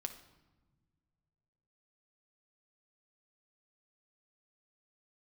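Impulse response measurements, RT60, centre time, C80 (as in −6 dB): non-exponential decay, 11 ms, 13.5 dB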